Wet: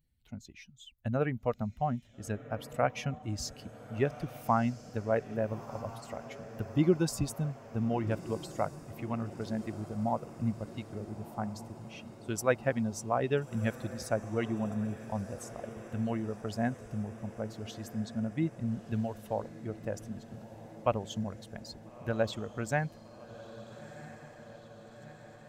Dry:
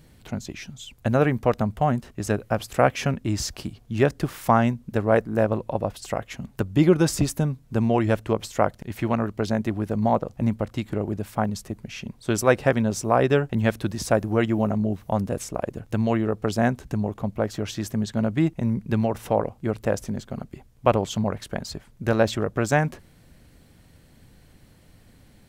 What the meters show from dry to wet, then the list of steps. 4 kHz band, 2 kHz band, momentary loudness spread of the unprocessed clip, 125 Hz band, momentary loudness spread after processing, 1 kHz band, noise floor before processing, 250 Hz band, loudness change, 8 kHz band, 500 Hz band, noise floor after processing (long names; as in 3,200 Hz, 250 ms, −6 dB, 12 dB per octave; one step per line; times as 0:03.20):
−10.5 dB, −10.5 dB, 11 LU, −10.0 dB, 17 LU, −10.0 dB, −54 dBFS, −10.0 dB, −10.0 dB, −10.0 dB, −10.5 dB, −53 dBFS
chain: spectral dynamics exaggerated over time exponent 1.5
feedback delay with all-pass diffusion 1,343 ms, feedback 68%, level −15 dB
level −7 dB